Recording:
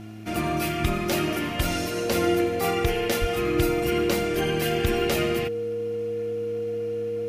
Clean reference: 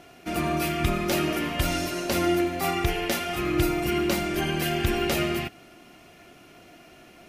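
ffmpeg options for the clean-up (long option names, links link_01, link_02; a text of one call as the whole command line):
ffmpeg -i in.wav -filter_complex "[0:a]bandreject=frequency=107.9:width_type=h:width=4,bandreject=frequency=215.8:width_type=h:width=4,bandreject=frequency=323.7:width_type=h:width=4,bandreject=frequency=470:width=30,asplit=3[link_01][link_02][link_03];[link_01]afade=type=out:start_time=3.2:duration=0.02[link_04];[link_02]highpass=frequency=140:width=0.5412,highpass=frequency=140:width=1.3066,afade=type=in:start_time=3.2:duration=0.02,afade=type=out:start_time=3.32:duration=0.02[link_05];[link_03]afade=type=in:start_time=3.32:duration=0.02[link_06];[link_04][link_05][link_06]amix=inputs=3:normalize=0" out.wav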